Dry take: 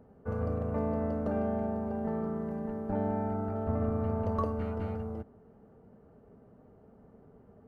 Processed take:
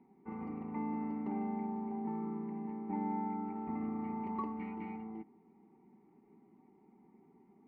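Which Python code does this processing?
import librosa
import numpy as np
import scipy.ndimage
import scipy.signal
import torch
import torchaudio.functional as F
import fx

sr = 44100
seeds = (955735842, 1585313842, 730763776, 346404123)

y = fx.vowel_filter(x, sr, vowel='u')
y = fx.peak_eq(y, sr, hz=1900.0, db=14.5, octaves=0.51)
y = y + 0.71 * np.pad(y, (int(5.3 * sr / 1000.0), 0))[:len(y)]
y = y * 10.0 ** (6.0 / 20.0)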